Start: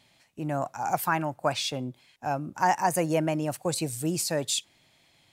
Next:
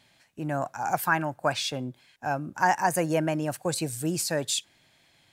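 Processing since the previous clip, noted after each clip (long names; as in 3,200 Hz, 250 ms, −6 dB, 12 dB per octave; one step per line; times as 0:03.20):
parametric band 1,600 Hz +7 dB 0.26 octaves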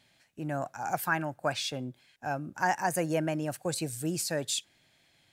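parametric band 1,000 Hz −4 dB 0.48 octaves
level −3.5 dB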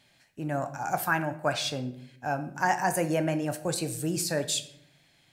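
rectangular room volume 130 cubic metres, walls mixed, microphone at 0.34 metres
level +2 dB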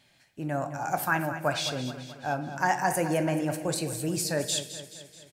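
repeating echo 215 ms, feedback 54%, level −12 dB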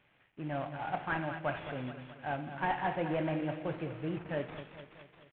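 variable-slope delta modulation 16 kbit/s
level −5.5 dB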